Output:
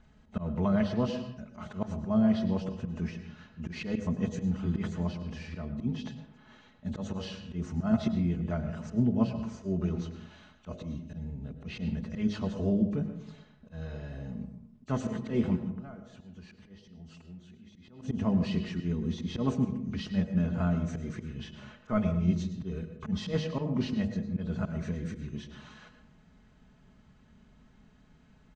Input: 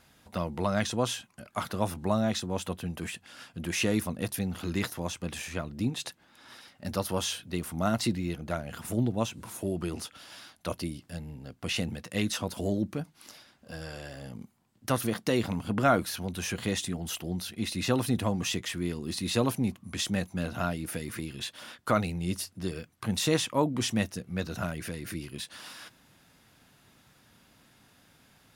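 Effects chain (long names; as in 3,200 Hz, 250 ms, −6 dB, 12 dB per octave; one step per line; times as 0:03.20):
hearing-aid frequency compression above 2,400 Hz 1.5 to 1
RIAA equalisation playback
comb filter 4.7 ms, depth 62%
hum removal 51.52 Hz, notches 16
0:15.56–0:18.02: downward compressor 16 to 1, threshold −37 dBFS, peak gain reduction 23 dB
volume swells 106 ms
convolution reverb RT60 0.70 s, pre-delay 96 ms, DRR 8.5 dB
level −6 dB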